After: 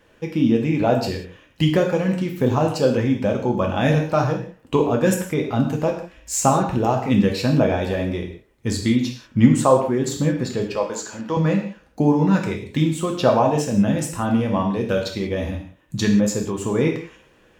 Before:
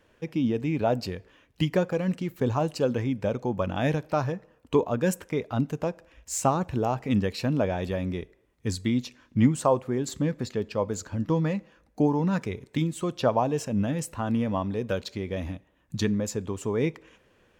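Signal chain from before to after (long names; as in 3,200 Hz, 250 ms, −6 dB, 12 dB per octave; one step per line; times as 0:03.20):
0:10.75–0:11.37: meter weighting curve A
reverb whose tail is shaped and stops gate 210 ms falling, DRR 1 dB
level +5 dB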